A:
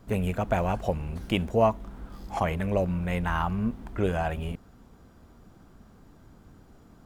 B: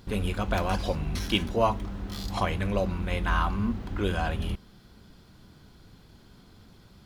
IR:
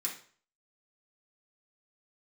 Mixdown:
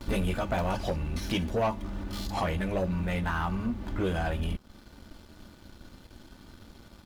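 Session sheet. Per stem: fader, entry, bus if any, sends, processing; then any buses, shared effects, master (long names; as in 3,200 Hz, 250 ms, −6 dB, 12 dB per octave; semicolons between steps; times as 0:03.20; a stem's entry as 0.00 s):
−10.0 dB, 0.00 s, no send, no processing
+3.0 dB, 9.9 ms, no send, comb filter 3.4 ms, depth 80%; downward compressor 3 to 1, threshold −35 dBFS, peak gain reduction 14.5 dB; automatic ducking −8 dB, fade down 0.55 s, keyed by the first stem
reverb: not used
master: leveller curve on the samples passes 2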